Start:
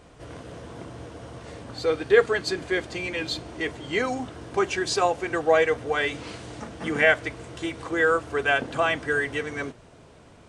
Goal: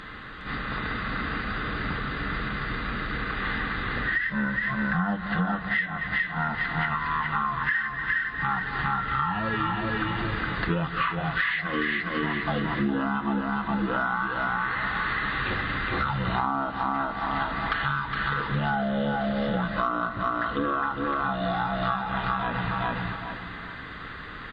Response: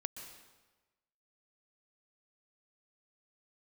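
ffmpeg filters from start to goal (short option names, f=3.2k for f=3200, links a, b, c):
-filter_complex "[0:a]aecho=1:1:176|352|528|704:0.596|0.155|0.0403|0.0105,asplit=2[a][b];[1:a]atrim=start_sample=2205,adelay=96[c];[b][c]afir=irnorm=-1:irlink=0,volume=-14.5dB[d];[a][d]amix=inputs=2:normalize=0,crystalizer=i=4.5:c=0,asetrate=18846,aresample=44100,superequalizer=8b=0.631:10b=3.16:11b=3.98,acompressor=threshold=-28dB:ratio=16,aemphasis=mode=reproduction:type=50fm,volume=5dB"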